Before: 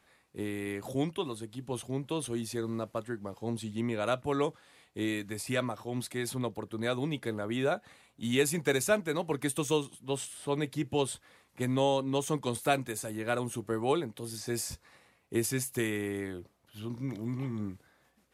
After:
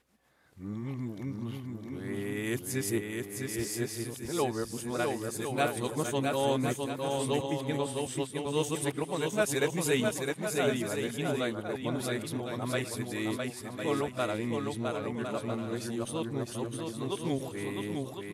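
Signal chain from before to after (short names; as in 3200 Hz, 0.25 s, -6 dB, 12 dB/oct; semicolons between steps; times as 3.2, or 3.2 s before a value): whole clip reversed; bouncing-ball echo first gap 0.66 s, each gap 0.6×, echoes 5; gain -1.5 dB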